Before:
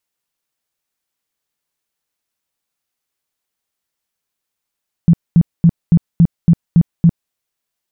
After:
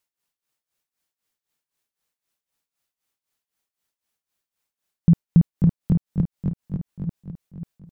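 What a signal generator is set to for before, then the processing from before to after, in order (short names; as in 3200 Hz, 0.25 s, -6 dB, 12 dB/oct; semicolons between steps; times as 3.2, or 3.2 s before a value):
tone bursts 168 Hz, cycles 9, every 0.28 s, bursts 8, -4.5 dBFS
compressor, threshold -10 dBFS; tremolo 3.9 Hz, depth 84%; on a send: feedback echo 0.539 s, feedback 31%, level -7 dB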